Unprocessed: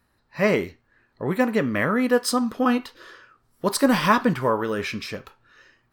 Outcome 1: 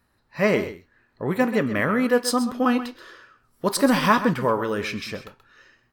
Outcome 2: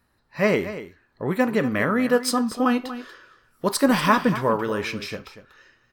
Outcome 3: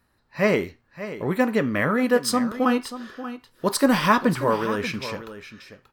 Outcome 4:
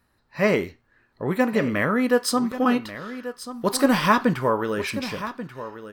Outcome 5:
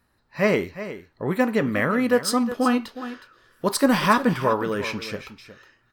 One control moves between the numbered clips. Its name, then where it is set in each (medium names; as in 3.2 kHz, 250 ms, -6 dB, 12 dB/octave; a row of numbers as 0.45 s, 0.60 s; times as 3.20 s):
delay, time: 130 ms, 238 ms, 584 ms, 1136 ms, 364 ms